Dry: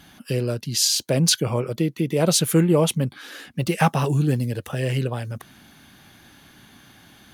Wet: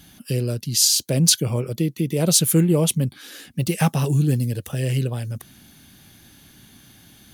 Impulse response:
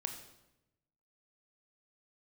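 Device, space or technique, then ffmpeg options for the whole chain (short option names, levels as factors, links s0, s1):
smiley-face EQ: -af "lowshelf=f=200:g=5,equalizer=f=1100:t=o:w=2:g=-6,highshelf=f=5600:g=8.5,volume=0.891"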